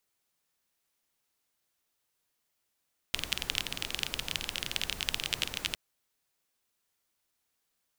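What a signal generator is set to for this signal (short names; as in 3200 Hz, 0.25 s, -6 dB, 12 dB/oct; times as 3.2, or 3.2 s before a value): rain from filtered ticks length 2.61 s, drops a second 22, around 3000 Hz, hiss -7 dB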